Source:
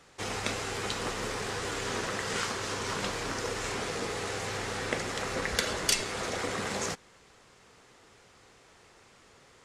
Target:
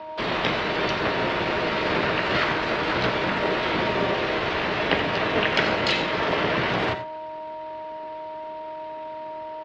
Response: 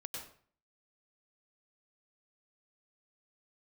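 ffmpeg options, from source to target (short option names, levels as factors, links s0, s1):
-filter_complex "[0:a]aeval=exprs='val(0)+0.00562*sin(2*PI*700*n/s)':c=same,highpass=f=150:t=q:w=0.5412,highpass=f=150:t=q:w=1.307,lowpass=f=3000:t=q:w=0.5176,lowpass=f=3000:t=q:w=0.7071,lowpass=f=3000:t=q:w=1.932,afreqshift=-74,asplit=3[s0][s1][s2];[s1]asetrate=22050,aresample=44100,atempo=2,volume=0.224[s3];[s2]asetrate=66075,aresample=44100,atempo=0.66742,volume=1[s4];[s0][s3][s4]amix=inputs=3:normalize=0,asplit=2[s5][s6];[1:a]atrim=start_sample=2205,afade=t=out:st=0.18:d=0.01,atrim=end_sample=8379,asetrate=52920,aresample=44100[s7];[s6][s7]afir=irnorm=-1:irlink=0,volume=0.891[s8];[s5][s8]amix=inputs=2:normalize=0,volume=1.68"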